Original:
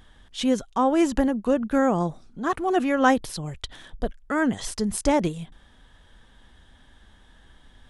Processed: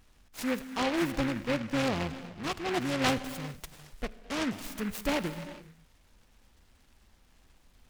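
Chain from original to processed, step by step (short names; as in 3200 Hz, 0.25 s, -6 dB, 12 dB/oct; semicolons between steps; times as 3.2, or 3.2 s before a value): 1.01–3.33 octaver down 1 oct, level -6 dB; non-linear reverb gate 0.43 s flat, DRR 11.5 dB; noise-modulated delay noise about 1600 Hz, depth 0.16 ms; gain -9 dB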